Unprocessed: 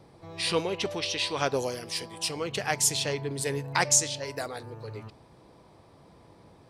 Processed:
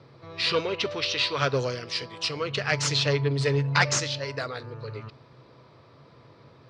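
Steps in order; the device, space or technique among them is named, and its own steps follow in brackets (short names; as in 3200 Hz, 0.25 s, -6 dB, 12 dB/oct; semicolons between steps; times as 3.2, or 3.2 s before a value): guitar amplifier (tube stage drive 15 dB, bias 0.65; tone controls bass -2 dB, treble +12 dB; speaker cabinet 93–3900 Hz, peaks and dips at 130 Hz +10 dB, 180 Hz -8 dB, 320 Hz -4 dB, 790 Hz -9 dB, 1300 Hz +5 dB, 3300 Hz -4 dB); 2.69–3.86 comb 6.9 ms, depth 60%; gain +7 dB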